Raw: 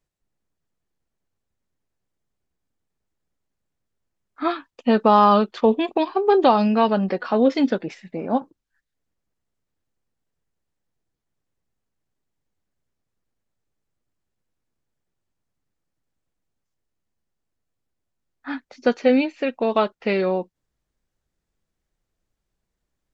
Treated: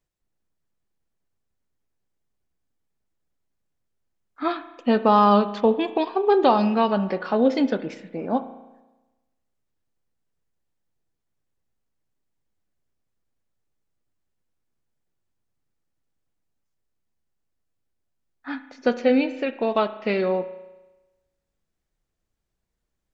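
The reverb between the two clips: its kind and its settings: spring tank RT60 1.1 s, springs 34 ms, chirp 80 ms, DRR 12 dB; trim -2 dB

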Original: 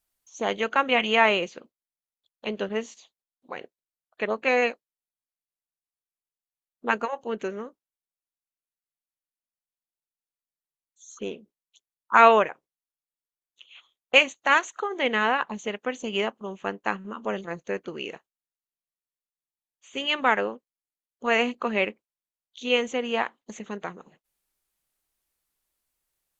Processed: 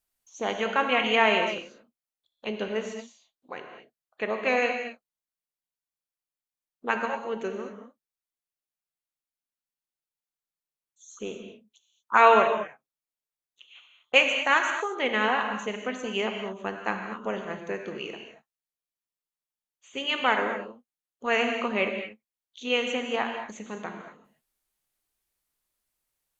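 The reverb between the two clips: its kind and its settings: gated-style reverb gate 260 ms flat, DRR 4 dB; trim -2.5 dB

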